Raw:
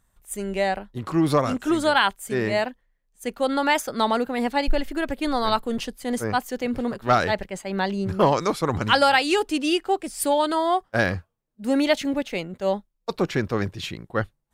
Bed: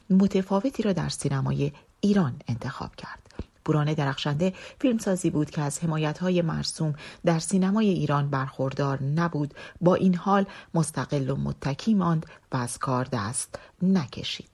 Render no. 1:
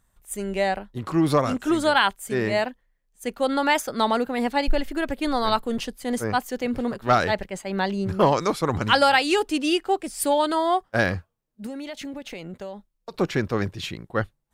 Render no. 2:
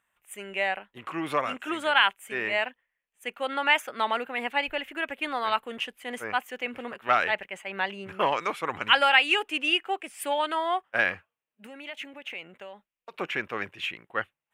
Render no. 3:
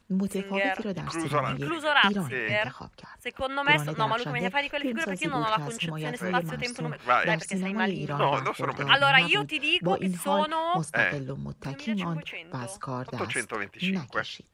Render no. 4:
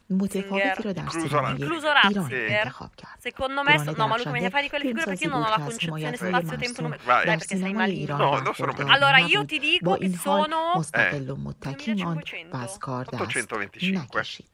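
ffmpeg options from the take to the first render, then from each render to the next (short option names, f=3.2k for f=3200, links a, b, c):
-filter_complex "[0:a]asettb=1/sr,asplit=3[a][b][c];[a]atrim=end=11.664[d];[b]atrim=start=11.66:end=13.14,asetpts=PTS-STARTPTS,afade=t=in:d=0.004:c=qsin,afade=t=out:st=1.476:d=0.004:c=qsin,acompressor=threshold=-31dB:ratio=10:attack=3.2:release=140:knee=1:detection=peak[e];[c]atrim=start=13.136[f];[d][e]acrossfade=d=0.004:c1=hsin:c2=qsin[g];[g][f]acrossfade=d=0.004:c1=qsin:c2=hsin"
-af "highpass=f=1.3k:p=1,highshelf=f=3.5k:t=q:w=3:g=-9"
-filter_complex "[1:a]volume=-7.5dB[a];[0:a][a]amix=inputs=2:normalize=0"
-af "volume=3dB"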